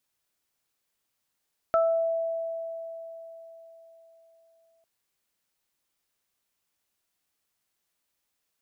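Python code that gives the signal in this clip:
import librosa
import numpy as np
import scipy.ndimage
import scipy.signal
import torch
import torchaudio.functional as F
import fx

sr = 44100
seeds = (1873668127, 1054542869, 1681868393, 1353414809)

y = fx.additive(sr, length_s=3.1, hz=660.0, level_db=-19.0, upper_db=(-3,), decay_s=4.12, upper_decays_s=(0.43,))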